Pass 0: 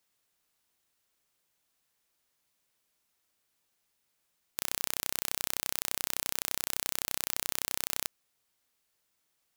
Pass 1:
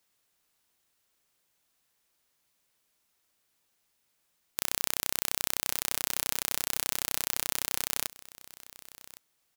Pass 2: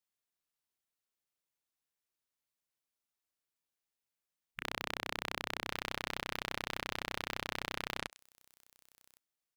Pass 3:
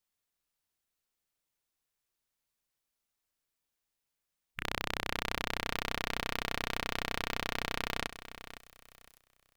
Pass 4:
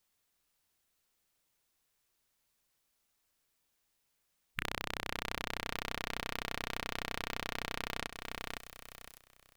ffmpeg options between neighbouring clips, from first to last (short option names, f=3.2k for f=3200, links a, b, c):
-af "aecho=1:1:1111:0.119,volume=2.5dB"
-filter_complex "[0:a]afwtdn=0.00891,acrossover=split=3700[a][b];[b]acompressor=threshold=-47dB:ratio=4:attack=1:release=60[c];[a][c]amix=inputs=2:normalize=0"
-af "lowshelf=f=66:g=11,aecho=1:1:509|1018|1527:0.224|0.0537|0.0129,volume=3.5dB"
-af "acompressor=threshold=-39dB:ratio=6,volume=7dB"